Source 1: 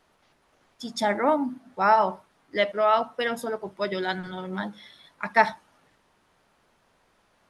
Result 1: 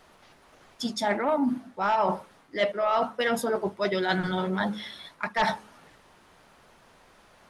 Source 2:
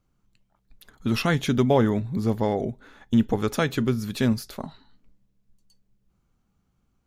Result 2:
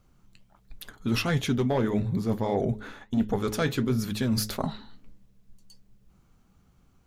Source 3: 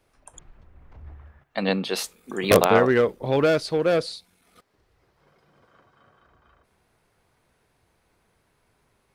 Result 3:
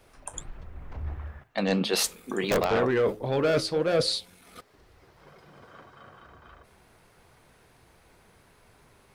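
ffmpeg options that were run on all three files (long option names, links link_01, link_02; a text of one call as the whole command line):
ffmpeg -i in.wav -af "aeval=exprs='0.891*sin(PI/2*2.82*val(0)/0.891)':channel_layout=same,areverse,acompressor=threshold=-19dB:ratio=5,areverse,flanger=delay=1.5:depth=9.2:regen=-67:speed=1.5:shape=sinusoidal,bandreject=frequency=106.4:width_type=h:width=4,bandreject=frequency=212.8:width_type=h:width=4,bandreject=frequency=319.2:width_type=h:width=4,bandreject=frequency=425.6:width_type=h:width=4,bandreject=frequency=532:width_type=h:width=4" out.wav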